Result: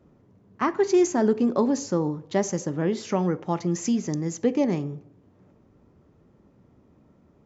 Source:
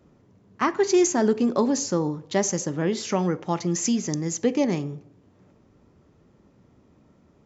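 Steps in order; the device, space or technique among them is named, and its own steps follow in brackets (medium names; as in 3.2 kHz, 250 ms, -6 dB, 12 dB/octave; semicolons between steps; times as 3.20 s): behind a face mask (treble shelf 2.2 kHz -8 dB)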